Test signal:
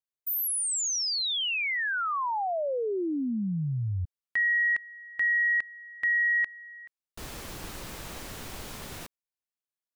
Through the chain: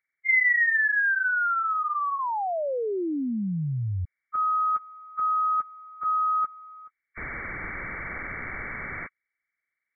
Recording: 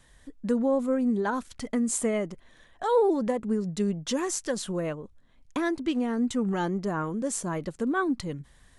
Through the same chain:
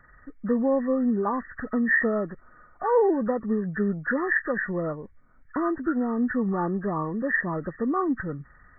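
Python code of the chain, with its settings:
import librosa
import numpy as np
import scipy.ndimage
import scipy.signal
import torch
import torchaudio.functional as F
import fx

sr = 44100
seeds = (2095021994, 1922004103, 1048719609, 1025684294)

y = fx.freq_compress(x, sr, knee_hz=1100.0, ratio=4.0)
y = y * 10.0 ** (1.5 / 20.0)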